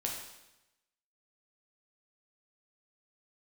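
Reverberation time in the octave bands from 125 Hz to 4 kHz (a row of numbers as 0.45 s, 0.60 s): 1.0 s, 1.0 s, 0.95 s, 0.95 s, 0.95 s, 0.95 s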